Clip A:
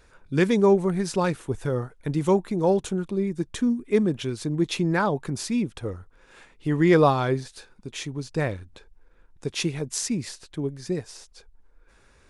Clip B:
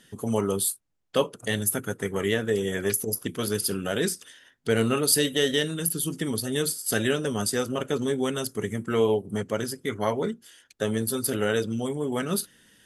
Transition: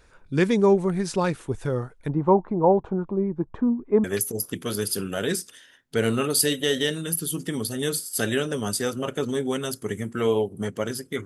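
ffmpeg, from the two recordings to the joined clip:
-filter_complex "[0:a]asettb=1/sr,asplit=3[s0][s1][s2];[s0]atrim=end=2.094[s3];[s1]atrim=start=2.09:end=4.04,asetpts=PTS-STARTPTS,afade=t=in:d=0.004:c=qsin,afade=t=out:st=1.946:d=0.004:c=qsin,lowpass=f=940:t=q:w=2.3[s4];[s2]atrim=start=4.036[s5];[s3][s4]acrossfade=d=0.004:c1=hsin:c2=qsin[s6];[s6][s5]acrossfade=d=0.004:c1=qsin:c2=hsin,apad=whole_dur=11.25,atrim=end=11.25,atrim=end=4.042[s7];[1:a]atrim=start=2.768:end=9.98[s8];[s7][s8]acrossfade=d=0.004:c1=hsin:c2=hsin"

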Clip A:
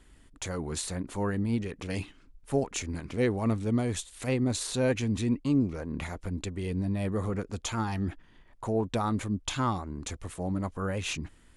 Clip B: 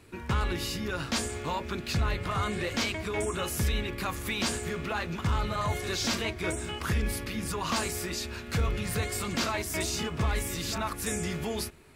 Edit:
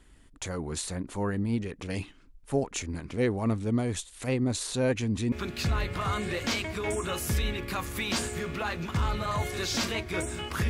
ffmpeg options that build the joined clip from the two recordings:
-filter_complex "[0:a]apad=whole_dur=10.69,atrim=end=10.69,atrim=end=5.322[s0];[1:a]atrim=start=1.618:end=6.99[s1];[s0][s1]acrossfade=d=0.004:c1=hsin:c2=hsin"

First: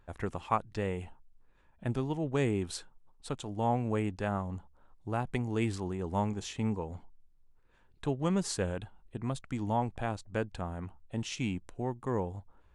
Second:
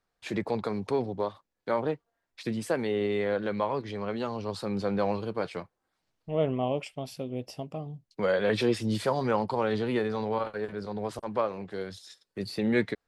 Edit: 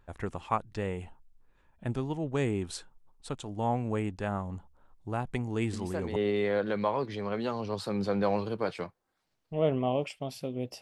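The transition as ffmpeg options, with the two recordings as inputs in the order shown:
-filter_complex "[1:a]asplit=2[s0][s1];[0:a]apad=whole_dur=10.81,atrim=end=10.81,atrim=end=6.162[s2];[s1]atrim=start=2.918:end=7.57[s3];[s0]atrim=start=2.49:end=2.92,asetpts=PTS-STARTPTS,volume=0.376,afade=t=in:d=0.004:c=hsin,afade=t=out:st=0.426:d=0.004:c=hsin,adelay=252693S[s4];[s2][s3]acrossfade=d=0.004:c1=hsin:c2=hsin[s5];[s5][s4]amix=inputs=2:normalize=0"

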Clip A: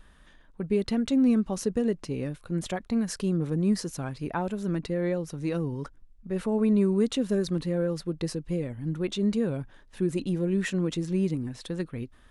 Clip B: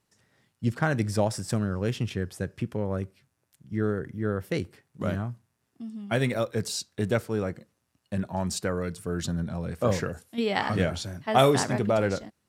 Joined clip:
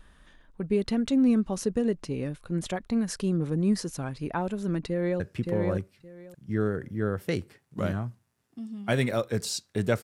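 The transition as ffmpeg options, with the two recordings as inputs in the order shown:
-filter_complex "[0:a]apad=whole_dur=10.03,atrim=end=10.03,atrim=end=5.202[s0];[1:a]atrim=start=2.428:end=7.26[s1];[s0][s1]acrossfade=d=0.004:c1=hsin:c2=hsin,asplit=2[s2][s3];[s3]afade=t=in:st=4.86:d=0.01,afade=t=out:st=5.2:d=0.01,aecho=0:1:570|1140|1710:0.749894|0.112484|0.0168726[s4];[s2][s4]amix=inputs=2:normalize=0"

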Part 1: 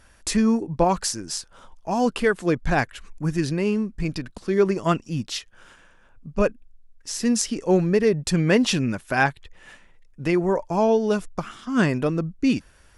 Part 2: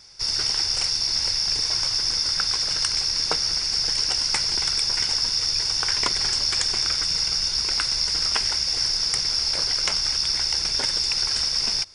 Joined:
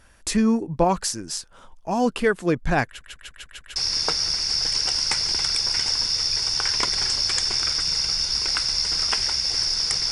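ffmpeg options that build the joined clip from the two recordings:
-filter_complex "[0:a]apad=whole_dur=10.11,atrim=end=10.11,asplit=6[s0][s1][s2][s3][s4][s5];[s0]atrim=end=3.012[s6];[s1]atrim=start=2.858:end=3.012[s7];[s2]atrim=start=2.858:end=3.012[s8];[s3]atrim=start=2.858:end=3.012[s9];[s4]atrim=start=2.858:end=3.012[s10];[s5]atrim=start=2.858:end=3.012[s11];[1:a]atrim=start=2.988:end=9.34[s12];[s6][s7]acrossfade=d=0.004:c1=hsin:c2=hsin[s13];[s13][s8]acrossfade=d=0.004:c1=hsin:c2=hsin[s14];[s14][s9]acrossfade=d=0.004:c1=hsin:c2=hsin[s15];[s15][s10]acrossfade=d=0.004:c1=hsin:c2=hsin[s16];[s16][s11]acrossfade=d=0.004:c1=hsin:c2=hsin[s17];[s17][s12]acrossfade=d=0.004:c1=hsin:c2=hsin"

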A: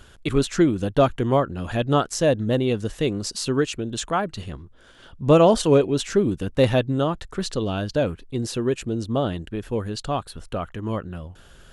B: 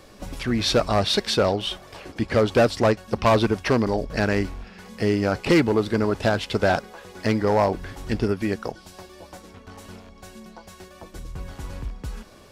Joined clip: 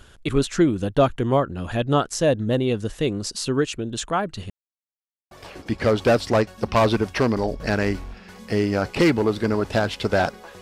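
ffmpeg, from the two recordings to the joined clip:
-filter_complex "[0:a]apad=whole_dur=10.61,atrim=end=10.61,asplit=2[s0][s1];[s0]atrim=end=4.5,asetpts=PTS-STARTPTS,afade=t=out:st=4.496:d=0.004:c=hsin[s2];[s1]atrim=start=4.5:end=5.31,asetpts=PTS-STARTPTS,volume=0[s3];[1:a]atrim=start=1.81:end=7.11,asetpts=PTS-STARTPTS,afade=t=in:d=0.004:c=hsin[s4];[s2][s3][s4]concat=n=3:v=0:a=1"

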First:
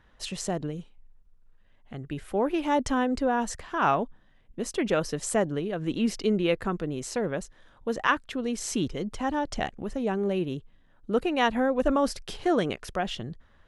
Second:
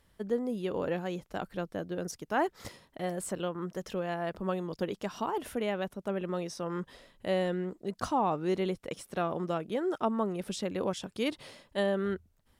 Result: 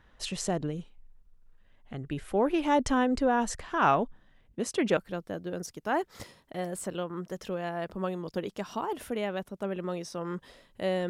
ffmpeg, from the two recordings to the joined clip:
-filter_complex "[0:a]asettb=1/sr,asplit=3[s0][s1][s2];[s0]atrim=end=4.494[s3];[s1]atrim=start=4.49:end=4.97,asetpts=PTS-STARTPTS,afade=t=in:d=0.004:c=qsin,afade=t=out:st=0.476:d=0.004:c=qsin,highpass=f=49:w=0.5412,highpass=f=49:w=1.3066[s4];[s2]atrim=start=4.966[s5];[s3][s4]acrossfade=d=0.004:c1=hsin:c2=qsin[s6];[s6][s5]acrossfade=d=0.004:c1=qsin:c2=hsin,apad=whole_dur=11.09,atrim=end=11.09,atrim=end=4.972[s7];[1:a]atrim=start=1.418:end=7.54[s8];[s7][s8]acrossfade=d=0.004:c1=hsin:c2=hsin"

